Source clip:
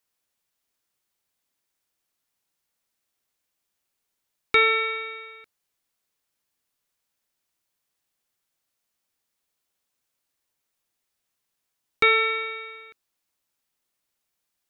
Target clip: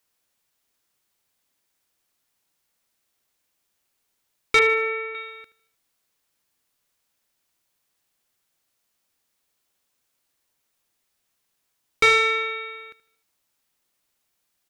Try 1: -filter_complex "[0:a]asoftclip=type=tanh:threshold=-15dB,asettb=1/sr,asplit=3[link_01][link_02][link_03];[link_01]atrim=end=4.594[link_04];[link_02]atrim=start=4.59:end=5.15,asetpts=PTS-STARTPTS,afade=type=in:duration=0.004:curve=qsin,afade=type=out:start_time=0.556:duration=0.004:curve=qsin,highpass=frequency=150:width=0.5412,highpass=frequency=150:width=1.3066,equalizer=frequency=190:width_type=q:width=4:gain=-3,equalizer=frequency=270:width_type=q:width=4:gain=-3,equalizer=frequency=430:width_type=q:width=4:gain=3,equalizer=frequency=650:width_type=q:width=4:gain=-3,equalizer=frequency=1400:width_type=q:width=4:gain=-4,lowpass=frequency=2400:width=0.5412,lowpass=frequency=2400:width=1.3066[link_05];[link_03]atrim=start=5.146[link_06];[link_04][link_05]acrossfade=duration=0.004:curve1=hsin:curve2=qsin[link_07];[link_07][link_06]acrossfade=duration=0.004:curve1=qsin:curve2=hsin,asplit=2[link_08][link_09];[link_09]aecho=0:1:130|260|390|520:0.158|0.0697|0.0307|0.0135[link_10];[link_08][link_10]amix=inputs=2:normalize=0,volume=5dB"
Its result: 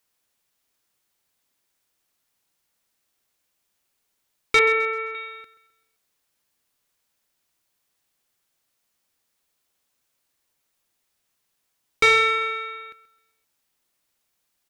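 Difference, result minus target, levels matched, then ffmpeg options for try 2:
echo 54 ms late
-filter_complex "[0:a]asoftclip=type=tanh:threshold=-15dB,asettb=1/sr,asplit=3[link_01][link_02][link_03];[link_01]atrim=end=4.594[link_04];[link_02]atrim=start=4.59:end=5.15,asetpts=PTS-STARTPTS,afade=type=in:duration=0.004:curve=qsin,afade=type=out:start_time=0.556:duration=0.004:curve=qsin,highpass=frequency=150:width=0.5412,highpass=frequency=150:width=1.3066,equalizer=frequency=190:width_type=q:width=4:gain=-3,equalizer=frequency=270:width_type=q:width=4:gain=-3,equalizer=frequency=430:width_type=q:width=4:gain=3,equalizer=frequency=650:width_type=q:width=4:gain=-3,equalizer=frequency=1400:width_type=q:width=4:gain=-4,lowpass=frequency=2400:width=0.5412,lowpass=frequency=2400:width=1.3066[link_05];[link_03]atrim=start=5.146[link_06];[link_04][link_05]acrossfade=duration=0.004:curve1=hsin:curve2=qsin[link_07];[link_07][link_06]acrossfade=duration=0.004:curve1=qsin:curve2=hsin,asplit=2[link_08][link_09];[link_09]aecho=0:1:76|152|228|304:0.158|0.0697|0.0307|0.0135[link_10];[link_08][link_10]amix=inputs=2:normalize=0,volume=5dB"

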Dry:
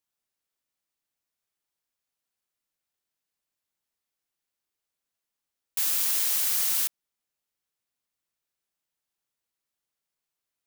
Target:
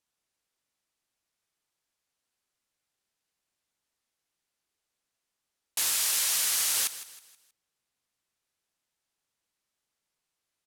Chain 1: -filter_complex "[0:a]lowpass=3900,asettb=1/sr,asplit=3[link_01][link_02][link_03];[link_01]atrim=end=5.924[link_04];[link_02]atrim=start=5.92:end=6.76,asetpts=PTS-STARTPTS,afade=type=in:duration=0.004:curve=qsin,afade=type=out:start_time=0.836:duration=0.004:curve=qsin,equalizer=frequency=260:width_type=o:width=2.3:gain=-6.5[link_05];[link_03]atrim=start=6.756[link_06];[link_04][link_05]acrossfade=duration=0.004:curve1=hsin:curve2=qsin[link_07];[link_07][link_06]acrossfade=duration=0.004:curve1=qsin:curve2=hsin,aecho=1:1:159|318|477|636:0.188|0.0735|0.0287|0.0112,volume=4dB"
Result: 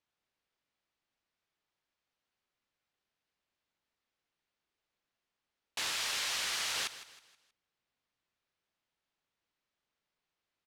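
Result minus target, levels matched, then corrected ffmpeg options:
4,000 Hz band +5.0 dB
-filter_complex "[0:a]lowpass=11000,asettb=1/sr,asplit=3[link_01][link_02][link_03];[link_01]atrim=end=5.924[link_04];[link_02]atrim=start=5.92:end=6.76,asetpts=PTS-STARTPTS,afade=type=in:duration=0.004:curve=qsin,afade=type=out:start_time=0.836:duration=0.004:curve=qsin,equalizer=frequency=260:width_type=o:width=2.3:gain=-6.5[link_05];[link_03]atrim=start=6.756[link_06];[link_04][link_05]acrossfade=duration=0.004:curve1=hsin:curve2=qsin[link_07];[link_07][link_06]acrossfade=duration=0.004:curve1=qsin:curve2=hsin,aecho=1:1:159|318|477|636:0.188|0.0735|0.0287|0.0112,volume=4dB"

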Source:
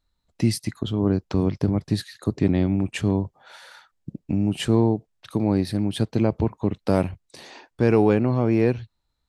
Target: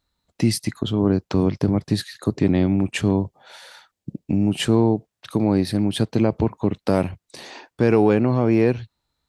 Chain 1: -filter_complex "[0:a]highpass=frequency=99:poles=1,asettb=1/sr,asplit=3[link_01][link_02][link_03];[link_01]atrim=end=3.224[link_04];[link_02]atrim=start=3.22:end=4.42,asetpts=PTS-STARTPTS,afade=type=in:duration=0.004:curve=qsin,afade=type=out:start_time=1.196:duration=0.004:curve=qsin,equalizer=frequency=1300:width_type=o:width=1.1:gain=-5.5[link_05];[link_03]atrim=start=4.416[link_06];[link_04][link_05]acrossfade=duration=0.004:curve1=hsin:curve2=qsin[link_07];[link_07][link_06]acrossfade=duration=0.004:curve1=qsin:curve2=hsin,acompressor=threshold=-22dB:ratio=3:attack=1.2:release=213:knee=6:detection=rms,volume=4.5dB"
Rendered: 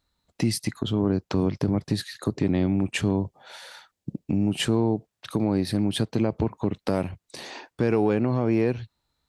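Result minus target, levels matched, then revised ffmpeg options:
downward compressor: peak gain reduction +6 dB
-filter_complex "[0:a]highpass=frequency=99:poles=1,asettb=1/sr,asplit=3[link_01][link_02][link_03];[link_01]atrim=end=3.224[link_04];[link_02]atrim=start=3.22:end=4.42,asetpts=PTS-STARTPTS,afade=type=in:duration=0.004:curve=qsin,afade=type=out:start_time=1.196:duration=0.004:curve=qsin,equalizer=frequency=1300:width_type=o:width=1.1:gain=-5.5[link_05];[link_03]atrim=start=4.416[link_06];[link_04][link_05]acrossfade=duration=0.004:curve1=hsin:curve2=qsin[link_07];[link_07][link_06]acrossfade=duration=0.004:curve1=qsin:curve2=hsin,acompressor=threshold=-12.5dB:ratio=3:attack=1.2:release=213:knee=6:detection=rms,volume=4.5dB"

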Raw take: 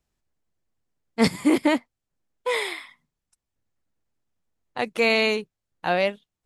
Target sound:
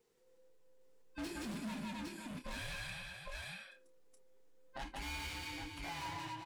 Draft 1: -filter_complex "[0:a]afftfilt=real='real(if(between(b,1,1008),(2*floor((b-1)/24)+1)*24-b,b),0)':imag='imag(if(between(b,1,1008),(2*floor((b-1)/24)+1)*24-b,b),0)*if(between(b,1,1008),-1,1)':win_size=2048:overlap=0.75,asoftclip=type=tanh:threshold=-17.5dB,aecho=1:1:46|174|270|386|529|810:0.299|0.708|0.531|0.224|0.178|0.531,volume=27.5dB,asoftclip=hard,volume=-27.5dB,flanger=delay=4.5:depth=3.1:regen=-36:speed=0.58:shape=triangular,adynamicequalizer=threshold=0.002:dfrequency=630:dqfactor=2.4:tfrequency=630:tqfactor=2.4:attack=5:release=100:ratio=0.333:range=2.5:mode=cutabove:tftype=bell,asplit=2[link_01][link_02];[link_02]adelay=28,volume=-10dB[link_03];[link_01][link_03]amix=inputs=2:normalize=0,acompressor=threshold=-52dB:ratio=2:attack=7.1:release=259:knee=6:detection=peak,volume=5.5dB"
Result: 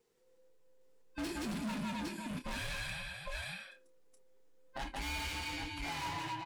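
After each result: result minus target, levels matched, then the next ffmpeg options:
soft clipping: distortion −7 dB; downward compressor: peak gain reduction −3.5 dB
-filter_complex "[0:a]afftfilt=real='real(if(between(b,1,1008),(2*floor((b-1)/24)+1)*24-b,b),0)':imag='imag(if(between(b,1,1008),(2*floor((b-1)/24)+1)*24-b,b),0)*if(between(b,1,1008),-1,1)':win_size=2048:overlap=0.75,asoftclip=type=tanh:threshold=-26dB,aecho=1:1:46|174|270|386|529|810:0.299|0.708|0.531|0.224|0.178|0.531,volume=27.5dB,asoftclip=hard,volume=-27.5dB,flanger=delay=4.5:depth=3.1:regen=-36:speed=0.58:shape=triangular,adynamicequalizer=threshold=0.002:dfrequency=630:dqfactor=2.4:tfrequency=630:tqfactor=2.4:attack=5:release=100:ratio=0.333:range=2.5:mode=cutabove:tftype=bell,asplit=2[link_01][link_02];[link_02]adelay=28,volume=-10dB[link_03];[link_01][link_03]amix=inputs=2:normalize=0,acompressor=threshold=-52dB:ratio=2:attack=7.1:release=259:knee=6:detection=peak,volume=5.5dB"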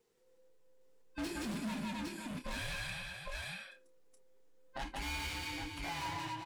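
downward compressor: peak gain reduction −3.5 dB
-filter_complex "[0:a]afftfilt=real='real(if(between(b,1,1008),(2*floor((b-1)/24)+1)*24-b,b),0)':imag='imag(if(between(b,1,1008),(2*floor((b-1)/24)+1)*24-b,b),0)*if(between(b,1,1008),-1,1)':win_size=2048:overlap=0.75,asoftclip=type=tanh:threshold=-26dB,aecho=1:1:46|174|270|386|529|810:0.299|0.708|0.531|0.224|0.178|0.531,volume=27.5dB,asoftclip=hard,volume=-27.5dB,flanger=delay=4.5:depth=3.1:regen=-36:speed=0.58:shape=triangular,adynamicequalizer=threshold=0.002:dfrequency=630:dqfactor=2.4:tfrequency=630:tqfactor=2.4:attack=5:release=100:ratio=0.333:range=2.5:mode=cutabove:tftype=bell,asplit=2[link_01][link_02];[link_02]adelay=28,volume=-10dB[link_03];[link_01][link_03]amix=inputs=2:normalize=0,acompressor=threshold=-59dB:ratio=2:attack=7.1:release=259:knee=6:detection=peak,volume=5.5dB"

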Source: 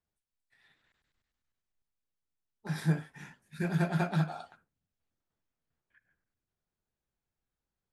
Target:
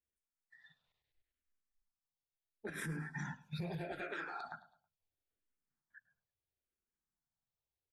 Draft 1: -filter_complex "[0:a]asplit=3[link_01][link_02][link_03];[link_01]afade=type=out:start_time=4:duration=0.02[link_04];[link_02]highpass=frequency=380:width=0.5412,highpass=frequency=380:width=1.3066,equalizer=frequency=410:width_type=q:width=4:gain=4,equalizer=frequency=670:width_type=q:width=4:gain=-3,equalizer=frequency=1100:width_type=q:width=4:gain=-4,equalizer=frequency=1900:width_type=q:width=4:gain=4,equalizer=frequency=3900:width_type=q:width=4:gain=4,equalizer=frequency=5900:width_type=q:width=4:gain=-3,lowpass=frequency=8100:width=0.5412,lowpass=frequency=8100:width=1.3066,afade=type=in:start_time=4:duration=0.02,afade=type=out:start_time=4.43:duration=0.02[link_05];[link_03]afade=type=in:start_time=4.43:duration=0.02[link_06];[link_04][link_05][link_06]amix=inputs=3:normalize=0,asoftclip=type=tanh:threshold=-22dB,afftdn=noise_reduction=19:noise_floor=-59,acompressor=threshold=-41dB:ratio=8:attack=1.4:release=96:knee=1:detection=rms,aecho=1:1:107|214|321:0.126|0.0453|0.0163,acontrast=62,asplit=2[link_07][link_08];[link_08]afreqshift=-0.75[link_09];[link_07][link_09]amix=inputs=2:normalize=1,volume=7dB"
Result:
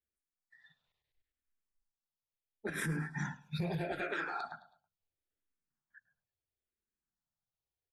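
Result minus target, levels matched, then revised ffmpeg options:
downward compressor: peak gain reduction −5.5 dB
-filter_complex "[0:a]asplit=3[link_01][link_02][link_03];[link_01]afade=type=out:start_time=4:duration=0.02[link_04];[link_02]highpass=frequency=380:width=0.5412,highpass=frequency=380:width=1.3066,equalizer=frequency=410:width_type=q:width=4:gain=4,equalizer=frequency=670:width_type=q:width=4:gain=-3,equalizer=frequency=1100:width_type=q:width=4:gain=-4,equalizer=frequency=1900:width_type=q:width=4:gain=4,equalizer=frequency=3900:width_type=q:width=4:gain=4,equalizer=frequency=5900:width_type=q:width=4:gain=-3,lowpass=frequency=8100:width=0.5412,lowpass=frequency=8100:width=1.3066,afade=type=in:start_time=4:duration=0.02,afade=type=out:start_time=4.43:duration=0.02[link_05];[link_03]afade=type=in:start_time=4.43:duration=0.02[link_06];[link_04][link_05][link_06]amix=inputs=3:normalize=0,asoftclip=type=tanh:threshold=-22dB,afftdn=noise_reduction=19:noise_floor=-59,acompressor=threshold=-47.5dB:ratio=8:attack=1.4:release=96:knee=1:detection=rms,aecho=1:1:107|214|321:0.126|0.0453|0.0163,acontrast=62,asplit=2[link_07][link_08];[link_08]afreqshift=-0.75[link_09];[link_07][link_09]amix=inputs=2:normalize=1,volume=7dB"

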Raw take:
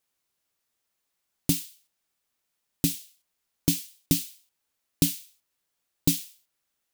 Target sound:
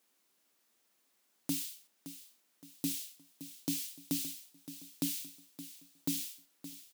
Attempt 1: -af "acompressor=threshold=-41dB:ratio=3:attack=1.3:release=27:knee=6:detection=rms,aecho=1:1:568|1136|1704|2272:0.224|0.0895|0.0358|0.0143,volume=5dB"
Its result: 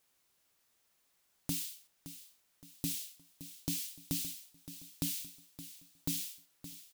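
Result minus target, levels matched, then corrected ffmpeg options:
250 Hz band −3.5 dB
-af "acompressor=threshold=-41dB:ratio=3:attack=1.3:release=27:knee=6:detection=rms,highpass=frequency=240:width_type=q:width=1.8,aecho=1:1:568|1136|1704|2272:0.224|0.0895|0.0358|0.0143,volume=5dB"

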